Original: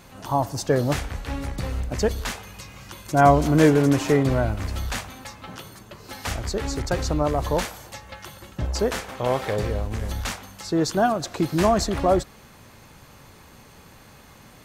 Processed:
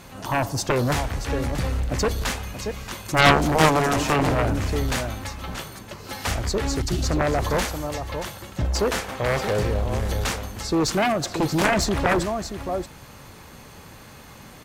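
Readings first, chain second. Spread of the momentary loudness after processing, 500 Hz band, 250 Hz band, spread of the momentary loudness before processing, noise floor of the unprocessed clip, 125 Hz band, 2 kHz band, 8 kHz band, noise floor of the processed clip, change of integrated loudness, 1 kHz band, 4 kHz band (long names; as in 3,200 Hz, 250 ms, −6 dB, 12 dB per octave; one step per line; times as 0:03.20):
13 LU, −1.0 dB, −1.5 dB, 22 LU, −49 dBFS, +0.5 dB, +6.0 dB, +3.5 dB, −45 dBFS, 0.0 dB, +1.0 dB, +5.5 dB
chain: time-frequency box erased 0:06.82–0:07.03, 400–2,600 Hz
single-tap delay 630 ms −11.5 dB
harmonic generator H 7 −8 dB, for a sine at −2 dBFS
level −1 dB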